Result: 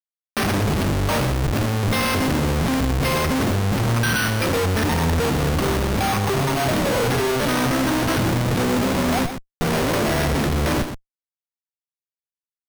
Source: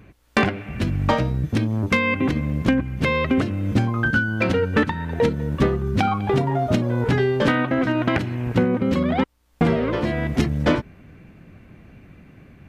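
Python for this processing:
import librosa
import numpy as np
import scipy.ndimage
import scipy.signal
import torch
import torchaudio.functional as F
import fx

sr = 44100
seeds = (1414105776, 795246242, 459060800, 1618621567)

y = fx.cvsd(x, sr, bps=64000)
y = fx.hum_notches(y, sr, base_hz=60, count=6)
y = fx.rider(y, sr, range_db=10, speed_s=0.5)
y = fx.schmitt(y, sr, flips_db=-33.5)
y = y + 10.0 ** (-9.0 / 20.0) * np.pad(y, (int(121 * sr / 1000.0), 0))[:len(y)]
y = np.repeat(y[::6], 6)[:len(y)]
y = y * librosa.db_to_amplitude(2.0)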